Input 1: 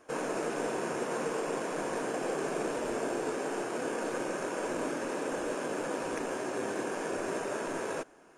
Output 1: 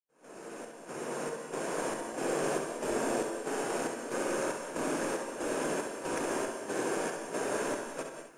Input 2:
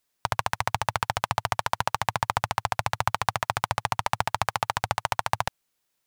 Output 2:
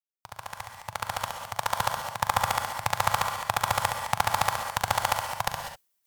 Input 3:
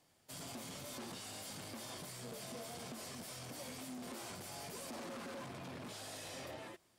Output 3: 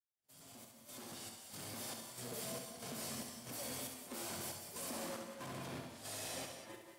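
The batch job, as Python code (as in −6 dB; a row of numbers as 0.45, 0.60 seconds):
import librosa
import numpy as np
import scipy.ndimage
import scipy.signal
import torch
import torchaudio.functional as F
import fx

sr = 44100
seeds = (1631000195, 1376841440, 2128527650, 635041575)

y = fx.fade_in_head(x, sr, length_s=2.08)
y = fx.high_shelf(y, sr, hz=9500.0, db=10.0)
y = fx.volume_shaper(y, sr, bpm=93, per_beat=1, depth_db=-18, release_ms=240.0, shape='slow start')
y = fx.room_early_taps(y, sr, ms=(41, 67), db=(-13.0, -6.5))
y = fx.rev_gated(y, sr, seeds[0], gate_ms=220, shape='rising', drr_db=5.5)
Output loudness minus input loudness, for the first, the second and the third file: 0.0, 0.0, +2.0 LU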